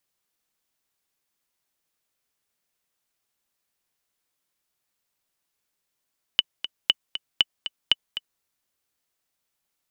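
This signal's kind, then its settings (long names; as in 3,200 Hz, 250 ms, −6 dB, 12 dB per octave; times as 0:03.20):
click track 236 BPM, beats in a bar 2, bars 4, 2,980 Hz, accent 12 dB −3.5 dBFS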